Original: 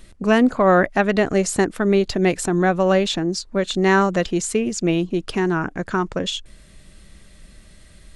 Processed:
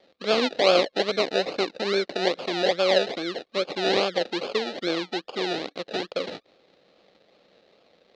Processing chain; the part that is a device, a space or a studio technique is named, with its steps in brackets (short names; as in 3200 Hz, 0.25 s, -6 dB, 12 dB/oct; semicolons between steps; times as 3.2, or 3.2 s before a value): circuit-bent sampling toy (decimation with a swept rate 32×, swing 60% 2.4 Hz; speaker cabinet 420–4900 Hz, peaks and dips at 510 Hz +6 dB, 970 Hz -10 dB, 1500 Hz -5 dB, 4000 Hz +9 dB); 1.18–2.27 notch 3300 Hz, Q 8.2; gain -3.5 dB